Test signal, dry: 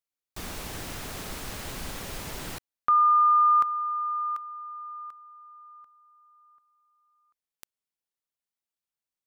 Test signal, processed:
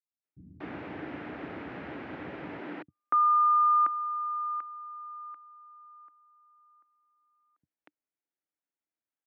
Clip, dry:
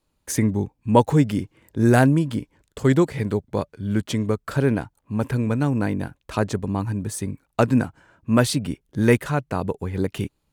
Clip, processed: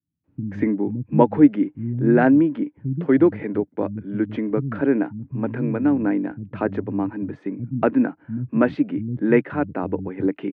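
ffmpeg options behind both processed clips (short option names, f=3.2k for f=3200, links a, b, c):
-filter_complex "[0:a]highpass=f=100:w=0.5412,highpass=f=100:w=1.3066,equalizer=f=110:t=q:w=4:g=-7,equalizer=f=300:t=q:w=4:g=10,equalizer=f=1.1k:t=q:w=4:g=-5,lowpass=f=2.2k:w=0.5412,lowpass=f=2.2k:w=1.3066,acrossover=split=180[a][b];[b]adelay=240[c];[a][c]amix=inputs=2:normalize=0"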